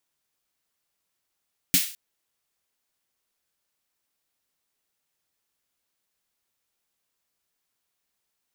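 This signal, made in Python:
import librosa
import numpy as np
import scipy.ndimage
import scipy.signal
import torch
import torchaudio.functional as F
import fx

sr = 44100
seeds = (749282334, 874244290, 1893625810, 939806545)

y = fx.drum_snare(sr, seeds[0], length_s=0.21, hz=180.0, second_hz=270.0, noise_db=5.5, noise_from_hz=2000.0, decay_s=0.11, noise_decay_s=0.42)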